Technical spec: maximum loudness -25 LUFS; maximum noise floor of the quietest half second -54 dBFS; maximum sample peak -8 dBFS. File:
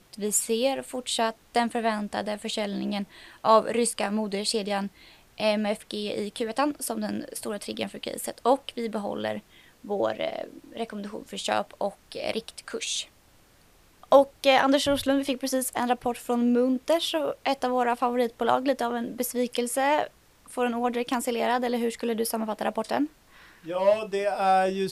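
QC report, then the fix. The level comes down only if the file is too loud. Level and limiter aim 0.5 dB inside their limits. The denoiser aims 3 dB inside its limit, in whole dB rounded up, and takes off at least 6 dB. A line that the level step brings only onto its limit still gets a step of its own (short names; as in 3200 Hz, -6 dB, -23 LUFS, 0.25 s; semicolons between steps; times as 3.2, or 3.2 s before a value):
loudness -27.0 LUFS: OK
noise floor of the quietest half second -58 dBFS: OK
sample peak -4.5 dBFS: fail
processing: limiter -8.5 dBFS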